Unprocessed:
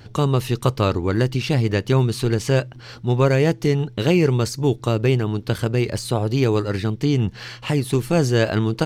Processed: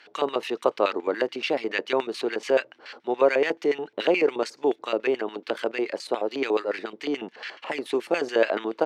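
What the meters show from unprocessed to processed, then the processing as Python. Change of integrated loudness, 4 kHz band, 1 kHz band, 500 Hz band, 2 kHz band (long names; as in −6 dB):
−5.5 dB, −4.5 dB, −1.5 dB, −2.0 dB, −1.0 dB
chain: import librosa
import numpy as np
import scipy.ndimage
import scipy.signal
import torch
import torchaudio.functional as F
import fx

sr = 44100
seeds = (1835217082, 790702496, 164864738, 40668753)

y = fx.filter_lfo_bandpass(x, sr, shape='square', hz=7.0, low_hz=640.0, high_hz=2200.0, q=1.5)
y = scipy.signal.sosfilt(scipy.signal.butter(4, 250.0, 'highpass', fs=sr, output='sos'), y)
y = y * 10.0 ** (3.5 / 20.0)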